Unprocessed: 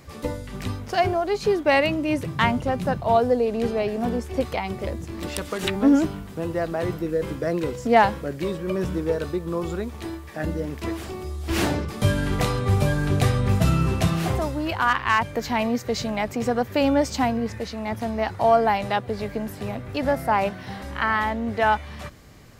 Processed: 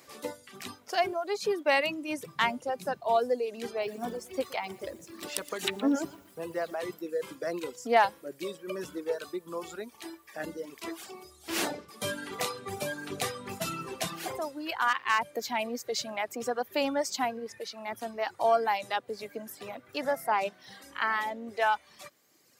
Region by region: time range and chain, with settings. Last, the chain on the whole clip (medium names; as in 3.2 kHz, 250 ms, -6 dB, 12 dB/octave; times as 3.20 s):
3.70–6.75 s: bass shelf 110 Hz +7.5 dB + bit-crushed delay 119 ms, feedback 35%, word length 8-bit, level -10.5 dB
whole clip: reverb removal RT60 1.7 s; high-pass 320 Hz 12 dB/octave; treble shelf 3.7 kHz +7 dB; trim -6 dB